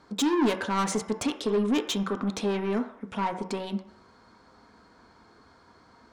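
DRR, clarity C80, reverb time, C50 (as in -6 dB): 4.5 dB, 13.5 dB, 0.60 s, 10.0 dB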